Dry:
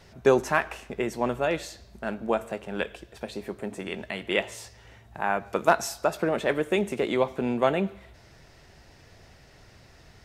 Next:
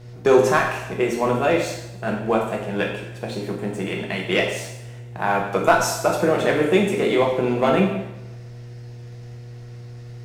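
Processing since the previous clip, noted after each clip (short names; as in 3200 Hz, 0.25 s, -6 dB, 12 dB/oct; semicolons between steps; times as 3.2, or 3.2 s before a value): sample leveller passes 1; buzz 120 Hz, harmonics 6, -45 dBFS -8 dB/oct; two-slope reverb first 0.8 s, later 2 s, from -23 dB, DRR -1 dB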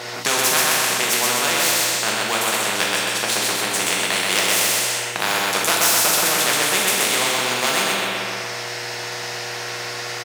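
HPF 750 Hz 12 dB/oct; feedback echo 0.127 s, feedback 35%, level -3 dB; spectral compressor 4:1; gain +3 dB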